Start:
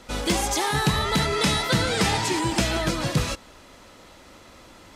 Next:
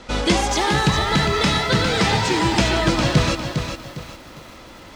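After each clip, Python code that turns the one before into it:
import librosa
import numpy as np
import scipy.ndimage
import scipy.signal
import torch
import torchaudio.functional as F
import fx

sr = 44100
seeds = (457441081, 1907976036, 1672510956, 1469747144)

y = scipy.signal.sosfilt(scipy.signal.butter(2, 5900.0, 'lowpass', fs=sr, output='sos'), x)
y = fx.rider(y, sr, range_db=10, speed_s=0.5)
y = fx.echo_crushed(y, sr, ms=405, feedback_pct=35, bits=8, wet_db=-7)
y = F.gain(torch.from_numpy(y), 4.5).numpy()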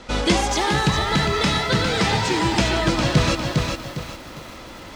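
y = fx.rider(x, sr, range_db=4, speed_s=0.5)
y = F.gain(torch.from_numpy(y), -1.0).numpy()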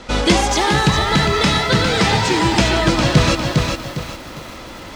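y = np.clip(x, -10.0 ** (-6.0 / 20.0), 10.0 ** (-6.0 / 20.0))
y = F.gain(torch.from_numpy(y), 4.5).numpy()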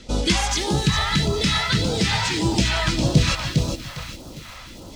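y = fx.phaser_stages(x, sr, stages=2, low_hz=290.0, high_hz=1900.0, hz=1.7, feedback_pct=25)
y = F.gain(torch.from_numpy(y), -3.5).numpy()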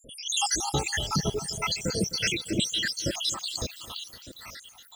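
y = fx.spec_dropout(x, sr, seeds[0], share_pct=83)
y = fx.tilt_eq(y, sr, slope=2.0)
y = fx.echo_crushed(y, sr, ms=258, feedback_pct=55, bits=8, wet_db=-15.0)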